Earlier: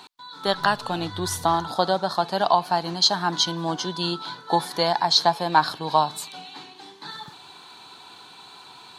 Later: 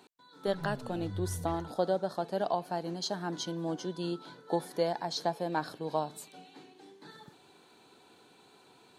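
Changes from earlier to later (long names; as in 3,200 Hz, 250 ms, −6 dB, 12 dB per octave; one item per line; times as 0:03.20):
speech −10.0 dB
master: add graphic EQ with 10 bands 250 Hz +4 dB, 500 Hz +8 dB, 1,000 Hz −9 dB, 4,000 Hz −9 dB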